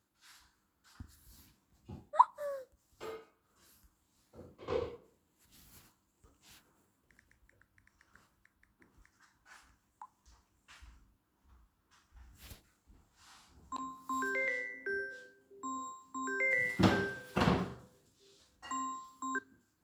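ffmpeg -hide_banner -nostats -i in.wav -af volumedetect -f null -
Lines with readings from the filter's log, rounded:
mean_volume: -40.4 dB
max_volume: -11.3 dB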